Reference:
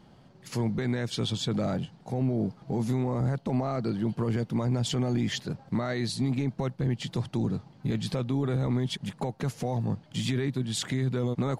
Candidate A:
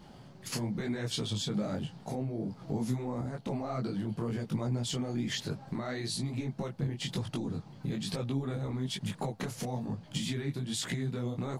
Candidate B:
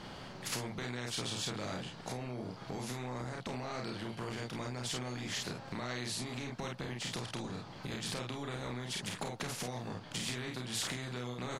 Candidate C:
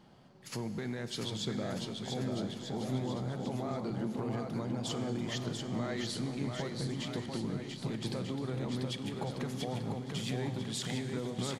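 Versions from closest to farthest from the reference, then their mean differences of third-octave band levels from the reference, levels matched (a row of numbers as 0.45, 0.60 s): A, C, B; 4.0, 7.5, 11.5 dB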